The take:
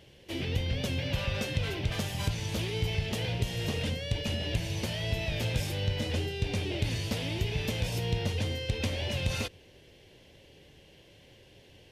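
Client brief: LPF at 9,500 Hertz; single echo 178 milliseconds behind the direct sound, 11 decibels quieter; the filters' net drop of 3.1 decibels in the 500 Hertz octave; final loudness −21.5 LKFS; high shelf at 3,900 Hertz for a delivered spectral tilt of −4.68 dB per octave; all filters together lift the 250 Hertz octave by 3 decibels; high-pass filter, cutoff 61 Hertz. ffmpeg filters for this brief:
ffmpeg -i in.wav -af "highpass=61,lowpass=9500,equalizer=frequency=250:width_type=o:gain=5.5,equalizer=frequency=500:width_type=o:gain=-5.5,highshelf=frequency=3900:gain=4.5,aecho=1:1:178:0.282,volume=9.5dB" out.wav

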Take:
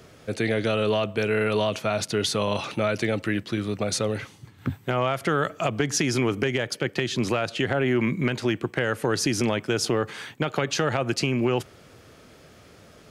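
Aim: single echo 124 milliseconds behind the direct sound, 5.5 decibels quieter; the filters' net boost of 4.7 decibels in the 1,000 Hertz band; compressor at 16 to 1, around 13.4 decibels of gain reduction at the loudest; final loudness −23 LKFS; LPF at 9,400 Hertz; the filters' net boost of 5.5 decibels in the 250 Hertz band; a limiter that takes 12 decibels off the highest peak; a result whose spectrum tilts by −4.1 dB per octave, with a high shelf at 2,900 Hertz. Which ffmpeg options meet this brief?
ffmpeg -i in.wav -af "lowpass=9400,equalizer=frequency=250:width_type=o:gain=6.5,equalizer=frequency=1000:width_type=o:gain=5,highshelf=frequency=2900:gain=6.5,acompressor=threshold=-28dB:ratio=16,alimiter=level_in=3.5dB:limit=-24dB:level=0:latency=1,volume=-3.5dB,aecho=1:1:124:0.531,volume=13.5dB" out.wav

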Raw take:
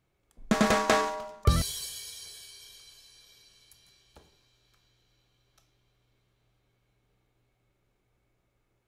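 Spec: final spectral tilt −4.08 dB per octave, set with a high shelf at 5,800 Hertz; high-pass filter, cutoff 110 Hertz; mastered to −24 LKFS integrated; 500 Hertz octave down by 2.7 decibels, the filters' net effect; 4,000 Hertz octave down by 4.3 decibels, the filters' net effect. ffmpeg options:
ffmpeg -i in.wav -af "highpass=110,equalizer=frequency=500:width_type=o:gain=-3.5,equalizer=frequency=4000:width_type=o:gain=-7,highshelf=frequency=5800:gain=4,volume=6dB" out.wav

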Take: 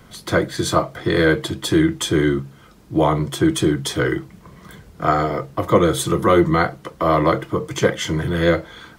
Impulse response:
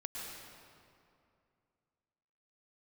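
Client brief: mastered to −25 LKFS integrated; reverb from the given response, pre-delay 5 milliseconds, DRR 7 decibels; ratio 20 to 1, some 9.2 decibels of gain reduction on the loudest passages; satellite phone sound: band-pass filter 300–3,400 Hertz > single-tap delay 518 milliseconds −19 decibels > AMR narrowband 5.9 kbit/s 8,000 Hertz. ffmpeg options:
-filter_complex "[0:a]acompressor=threshold=-19dB:ratio=20,asplit=2[link_01][link_02];[1:a]atrim=start_sample=2205,adelay=5[link_03];[link_02][link_03]afir=irnorm=-1:irlink=0,volume=-7dB[link_04];[link_01][link_04]amix=inputs=2:normalize=0,highpass=300,lowpass=3400,aecho=1:1:518:0.112,volume=4.5dB" -ar 8000 -c:a libopencore_amrnb -b:a 5900

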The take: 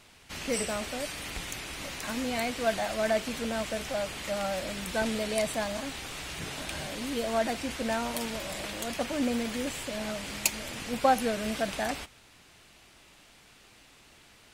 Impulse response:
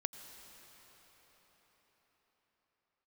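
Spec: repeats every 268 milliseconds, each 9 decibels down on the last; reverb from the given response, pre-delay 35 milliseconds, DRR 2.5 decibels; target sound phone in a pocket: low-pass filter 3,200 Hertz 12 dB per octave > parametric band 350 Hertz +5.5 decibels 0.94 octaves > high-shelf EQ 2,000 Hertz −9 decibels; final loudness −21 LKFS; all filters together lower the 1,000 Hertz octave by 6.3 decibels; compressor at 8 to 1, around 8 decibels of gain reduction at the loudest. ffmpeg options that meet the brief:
-filter_complex "[0:a]equalizer=frequency=1000:width_type=o:gain=-9,acompressor=threshold=-32dB:ratio=8,aecho=1:1:268|536|804|1072:0.355|0.124|0.0435|0.0152,asplit=2[link_01][link_02];[1:a]atrim=start_sample=2205,adelay=35[link_03];[link_02][link_03]afir=irnorm=-1:irlink=0,volume=-2dB[link_04];[link_01][link_04]amix=inputs=2:normalize=0,lowpass=3200,equalizer=frequency=350:width_type=o:width=0.94:gain=5.5,highshelf=frequency=2000:gain=-9,volume=14dB"

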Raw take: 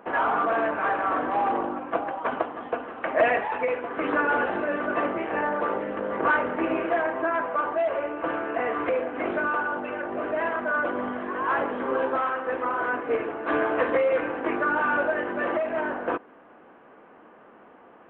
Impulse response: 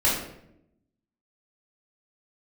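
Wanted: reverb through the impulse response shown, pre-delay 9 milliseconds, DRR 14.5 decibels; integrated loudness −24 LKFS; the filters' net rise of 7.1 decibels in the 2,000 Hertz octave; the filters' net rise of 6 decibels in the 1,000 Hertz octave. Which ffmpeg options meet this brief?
-filter_complex "[0:a]equalizer=frequency=1000:width_type=o:gain=5.5,equalizer=frequency=2000:width_type=o:gain=7.5,asplit=2[link_01][link_02];[1:a]atrim=start_sample=2205,adelay=9[link_03];[link_02][link_03]afir=irnorm=-1:irlink=0,volume=-28.5dB[link_04];[link_01][link_04]amix=inputs=2:normalize=0,volume=-3dB"

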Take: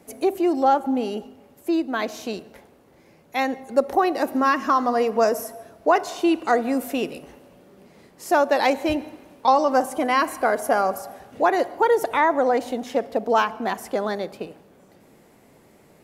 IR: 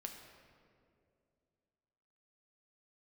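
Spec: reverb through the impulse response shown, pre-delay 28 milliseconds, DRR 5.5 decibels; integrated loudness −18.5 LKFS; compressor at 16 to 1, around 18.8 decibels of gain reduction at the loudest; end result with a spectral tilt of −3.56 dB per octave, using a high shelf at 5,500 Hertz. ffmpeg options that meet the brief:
-filter_complex "[0:a]highshelf=frequency=5500:gain=3.5,acompressor=threshold=-32dB:ratio=16,asplit=2[link_01][link_02];[1:a]atrim=start_sample=2205,adelay=28[link_03];[link_02][link_03]afir=irnorm=-1:irlink=0,volume=-2.5dB[link_04];[link_01][link_04]amix=inputs=2:normalize=0,volume=18dB"

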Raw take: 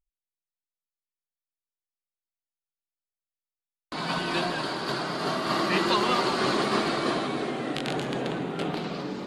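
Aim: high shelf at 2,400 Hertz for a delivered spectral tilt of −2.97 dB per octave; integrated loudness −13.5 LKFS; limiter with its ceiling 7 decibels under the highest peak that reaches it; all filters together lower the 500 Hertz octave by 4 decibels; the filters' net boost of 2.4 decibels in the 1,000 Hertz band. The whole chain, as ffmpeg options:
ffmpeg -i in.wav -af "equalizer=frequency=500:width_type=o:gain=-7,equalizer=frequency=1000:width_type=o:gain=5.5,highshelf=frequency=2400:gain=-4.5,volume=15.5dB,alimiter=limit=-2dB:level=0:latency=1" out.wav

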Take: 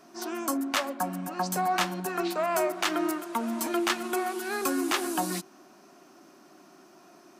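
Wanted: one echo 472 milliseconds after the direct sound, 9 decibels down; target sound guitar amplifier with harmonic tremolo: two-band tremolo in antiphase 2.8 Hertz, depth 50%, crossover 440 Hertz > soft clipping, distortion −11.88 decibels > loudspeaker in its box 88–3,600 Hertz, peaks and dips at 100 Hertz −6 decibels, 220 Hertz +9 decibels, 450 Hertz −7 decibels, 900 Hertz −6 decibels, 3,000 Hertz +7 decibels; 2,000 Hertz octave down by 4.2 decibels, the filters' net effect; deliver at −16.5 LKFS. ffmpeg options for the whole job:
ffmpeg -i in.wav -filter_complex "[0:a]equalizer=frequency=2000:width_type=o:gain=-6.5,aecho=1:1:472:0.355,acrossover=split=440[link_01][link_02];[link_01]aeval=exprs='val(0)*(1-0.5/2+0.5/2*cos(2*PI*2.8*n/s))':channel_layout=same[link_03];[link_02]aeval=exprs='val(0)*(1-0.5/2-0.5/2*cos(2*PI*2.8*n/s))':channel_layout=same[link_04];[link_03][link_04]amix=inputs=2:normalize=0,asoftclip=threshold=-30dB,highpass=88,equalizer=frequency=100:width_type=q:width=4:gain=-6,equalizer=frequency=220:width_type=q:width=4:gain=9,equalizer=frequency=450:width_type=q:width=4:gain=-7,equalizer=frequency=900:width_type=q:width=4:gain=-6,equalizer=frequency=3000:width_type=q:width=4:gain=7,lowpass=frequency=3600:width=0.5412,lowpass=frequency=3600:width=1.3066,volume=19.5dB" out.wav

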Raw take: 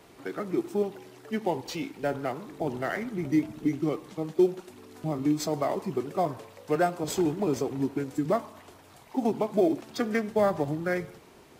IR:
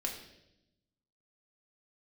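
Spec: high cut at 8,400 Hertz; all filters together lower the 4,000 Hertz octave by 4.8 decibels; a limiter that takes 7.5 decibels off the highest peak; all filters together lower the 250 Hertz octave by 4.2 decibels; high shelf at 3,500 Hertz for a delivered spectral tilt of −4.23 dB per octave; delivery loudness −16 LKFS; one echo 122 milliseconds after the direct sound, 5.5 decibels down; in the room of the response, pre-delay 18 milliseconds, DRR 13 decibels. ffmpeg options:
-filter_complex "[0:a]lowpass=8400,equalizer=frequency=250:width_type=o:gain=-6,highshelf=frequency=3500:gain=-4,equalizer=frequency=4000:width_type=o:gain=-3,alimiter=limit=-22dB:level=0:latency=1,aecho=1:1:122:0.531,asplit=2[link_01][link_02];[1:a]atrim=start_sample=2205,adelay=18[link_03];[link_02][link_03]afir=irnorm=-1:irlink=0,volume=-15dB[link_04];[link_01][link_04]amix=inputs=2:normalize=0,volume=17dB"

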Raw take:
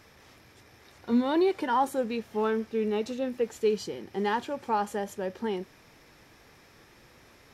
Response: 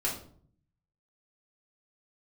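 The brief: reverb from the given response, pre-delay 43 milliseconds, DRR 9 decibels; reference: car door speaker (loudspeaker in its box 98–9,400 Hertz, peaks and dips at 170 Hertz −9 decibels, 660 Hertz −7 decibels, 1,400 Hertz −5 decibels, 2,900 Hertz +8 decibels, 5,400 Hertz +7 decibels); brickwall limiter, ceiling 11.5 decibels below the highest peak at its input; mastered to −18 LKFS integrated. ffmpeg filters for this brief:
-filter_complex "[0:a]alimiter=level_in=2.5dB:limit=-24dB:level=0:latency=1,volume=-2.5dB,asplit=2[link_01][link_02];[1:a]atrim=start_sample=2205,adelay=43[link_03];[link_02][link_03]afir=irnorm=-1:irlink=0,volume=-15dB[link_04];[link_01][link_04]amix=inputs=2:normalize=0,highpass=98,equalizer=frequency=170:width_type=q:width=4:gain=-9,equalizer=frequency=660:width_type=q:width=4:gain=-7,equalizer=frequency=1400:width_type=q:width=4:gain=-5,equalizer=frequency=2900:width_type=q:width=4:gain=8,equalizer=frequency=5400:width_type=q:width=4:gain=7,lowpass=frequency=9400:width=0.5412,lowpass=frequency=9400:width=1.3066,volume=18dB"

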